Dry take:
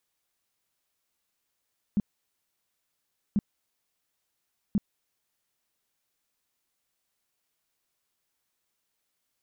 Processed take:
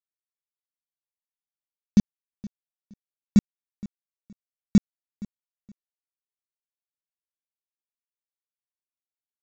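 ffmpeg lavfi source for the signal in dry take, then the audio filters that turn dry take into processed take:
-f lavfi -i "aevalsrc='0.1*sin(2*PI*205*mod(t,1.39))*lt(mod(t,1.39),6/205)':d=4.17:s=44100"
-af "dynaudnorm=f=320:g=9:m=11.5dB,aresample=16000,acrusher=bits=4:mix=0:aa=0.5,aresample=44100,aecho=1:1:469|938:0.1|0.024"

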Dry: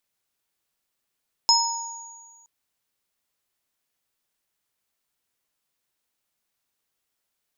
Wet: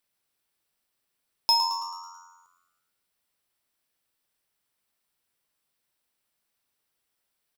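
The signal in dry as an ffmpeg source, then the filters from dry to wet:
-f lavfi -i "aevalsrc='0.112*pow(10,-3*t/1.35)*sin(2*PI*929*t)+0.224*pow(10,-3*t/0.58)*sin(2*PI*5170*t)+0.0794*pow(10,-3*t/1.86)*sin(2*PI*6760*t)':d=0.97:s=44100"
-filter_complex "[0:a]asoftclip=type=tanh:threshold=-12dB,bandreject=f=6.7k:w=5.9,asplit=7[a][b][c][d][e][f][g];[b]adelay=109,afreqshift=88,volume=-10dB[h];[c]adelay=218,afreqshift=176,volume=-15.7dB[i];[d]adelay=327,afreqshift=264,volume=-21.4dB[j];[e]adelay=436,afreqshift=352,volume=-27dB[k];[f]adelay=545,afreqshift=440,volume=-32.7dB[l];[g]adelay=654,afreqshift=528,volume=-38.4dB[m];[a][h][i][j][k][l][m]amix=inputs=7:normalize=0"

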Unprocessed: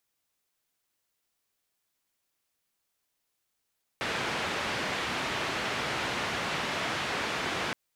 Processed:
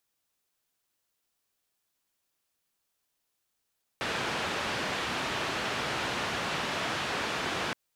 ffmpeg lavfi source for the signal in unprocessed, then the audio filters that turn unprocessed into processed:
-f lavfi -i "anoisesrc=c=white:d=3.72:r=44100:seed=1,highpass=f=83,lowpass=f=2500,volume=-18dB"
-af "equalizer=f=2.1k:w=6.3:g=-3"

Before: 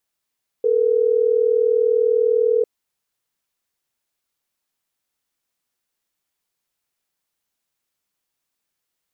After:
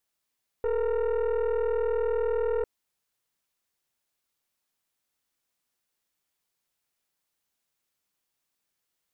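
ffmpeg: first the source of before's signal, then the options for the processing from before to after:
-f lavfi -i "aevalsrc='0.141*(sin(2*PI*440*t)+sin(2*PI*480*t))*clip(min(mod(t,6),2-mod(t,6))/0.005,0,1)':d=3.12:s=44100"
-af "alimiter=limit=-17dB:level=0:latency=1:release=50,aeval=exprs='(tanh(14.1*val(0)+0.45)-tanh(0.45))/14.1':c=same"

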